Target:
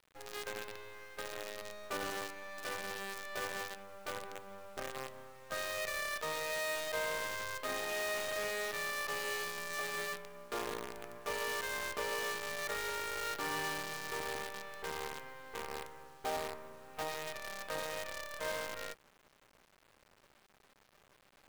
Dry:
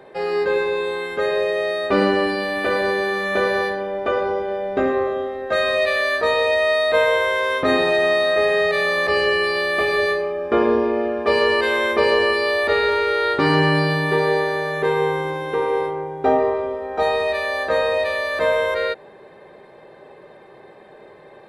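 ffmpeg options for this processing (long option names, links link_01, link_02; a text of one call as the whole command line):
ffmpeg -i in.wav -af "lowpass=1400,aderivative,bandreject=frequency=60:width_type=h:width=6,bandreject=frequency=120:width_type=h:width=6,bandreject=frequency=180:width_type=h:width=6,areverse,acompressor=mode=upward:threshold=-59dB:ratio=2.5,areverse,acrusher=bits=7:dc=4:mix=0:aa=0.000001" out.wav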